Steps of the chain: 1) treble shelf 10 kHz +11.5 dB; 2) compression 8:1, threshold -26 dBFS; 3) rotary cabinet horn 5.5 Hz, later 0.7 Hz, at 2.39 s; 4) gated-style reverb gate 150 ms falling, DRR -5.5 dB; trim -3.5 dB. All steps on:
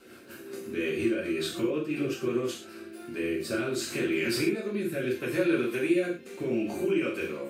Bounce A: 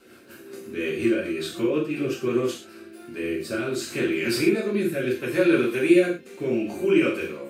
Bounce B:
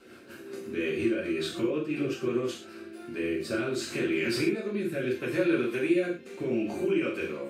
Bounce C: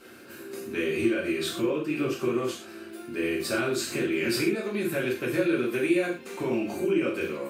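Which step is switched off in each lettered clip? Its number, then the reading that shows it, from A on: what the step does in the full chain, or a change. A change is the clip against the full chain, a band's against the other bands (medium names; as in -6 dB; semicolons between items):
2, mean gain reduction 3.0 dB; 1, 8 kHz band -3.5 dB; 3, momentary loudness spread change -2 LU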